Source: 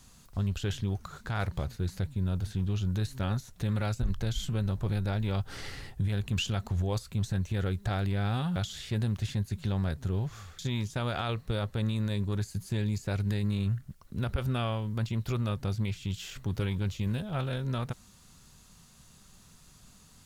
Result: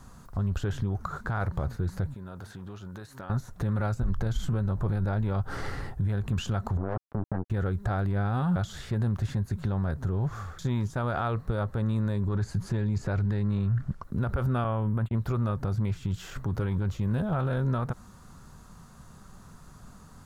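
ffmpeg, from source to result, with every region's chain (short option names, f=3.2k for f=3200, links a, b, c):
-filter_complex "[0:a]asettb=1/sr,asplit=3[a][b][c];[a]atrim=end=2.144[d];[b]atrim=start=2.14:end=3.3,asetpts=PTS-STARTPTS,afade=t=in:d=0.004:c=qsin,afade=t=out:st=1.156:d=0.004:c=qsin,highpass=f=630:p=1,acompressor=threshold=-45dB:ratio=12:attack=3.2:release=140:knee=1:detection=peak[e];[c]atrim=start=3.296[f];[d][e]acrossfade=d=0.004:c1=hsin:c2=qsin[g];[g][f]acrossfade=d=0.004:c1=qsin:c2=hsin,asettb=1/sr,asplit=3[h][i][j];[h]atrim=end=6.774[k];[i]atrim=start=6.77:end=7.5,asetpts=PTS-STARTPTS,afade=t=in:d=0.004:c=qsin,afade=t=out:st=0.726:d=0.004:c=qsin,lowpass=f=1.4k:w=0.5412,lowpass=f=1.4k:w=1.3066,acompressor=threshold=-39dB:ratio=3:attack=3.2:release=140:knee=1:detection=peak,acrusher=bits=5:mix=0:aa=0.5[l];[j]atrim=start=7.496[m];[k][l]acrossfade=d=0.004:c1=hsin:c2=qsin[n];[n][m]acrossfade=d=0.004:c1=qsin:c2=hsin,asettb=1/sr,asplit=3[o][p][q];[o]atrim=end=12.284[r];[p]atrim=start=12.28:end=14.04,asetpts=PTS-STARTPTS,afade=t=in:d=0.004:c=qsin,afade=t=out:st=1.756:d=0.004:c=qsin,lowpass=3.7k,acontrast=67,aemphasis=mode=production:type=50fm[s];[q]atrim=start=14.036[t];[r][s]acrossfade=d=0.004:c1=hsin:c2=qsin[u];[u][t]acrossfade=d=0.004:c1=qsin:c2=hsin,asettb=1/sr,asplit=3[v][w][x];[v]atrim=end=14.644[y];[w]atrim=start=14.64:end=15.15,asetpts=PTS-STARTPTS,afade=t=in:d=0.004:c=qsin,afade=t=out:st=0.506:d=0.004:c=qsin,asuperstop=centerf=5500:order=4:qfactor=1.1,agate=range=-36dB:threshold=-36dB:ratio=16:release=100:detection=peak[z];[x]atrim=start=15.146[aa];[y][z]acrossfade=d=0.004:c1=hsin:c2=qsin[ab];[ab][aa]acrossfade=d=0.004:c1=qsin:c2=hsin,highshelf=f=1.9k:t=q:w=1.5:g=-10.5,alimiter=level_in=4.5dB:limit=-24dB:level=0:latency=1:release=67,volume=-4.5dB,volume=8.5dB"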